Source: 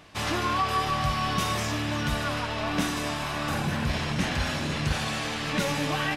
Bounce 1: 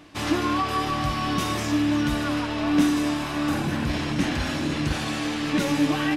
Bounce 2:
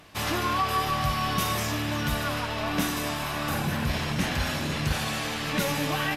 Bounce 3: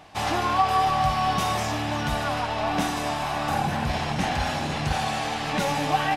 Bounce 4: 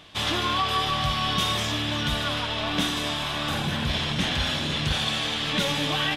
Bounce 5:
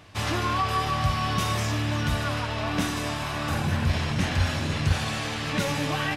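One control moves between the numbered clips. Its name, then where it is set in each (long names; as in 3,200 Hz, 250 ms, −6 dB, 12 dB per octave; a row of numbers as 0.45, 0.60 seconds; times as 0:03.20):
parametric band, centre frequency: 300, 13,000, 780, 3,400, 94 Hertz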